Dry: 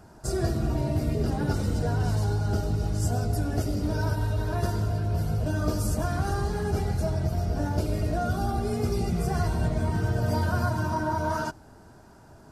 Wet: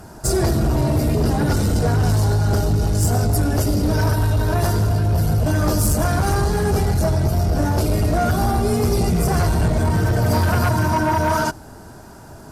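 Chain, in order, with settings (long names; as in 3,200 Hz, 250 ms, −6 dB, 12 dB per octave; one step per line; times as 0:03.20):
sine wavefolder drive 7 dB, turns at −13 dBFS
high-shelf EQ 8,900 Hz +9.5 dB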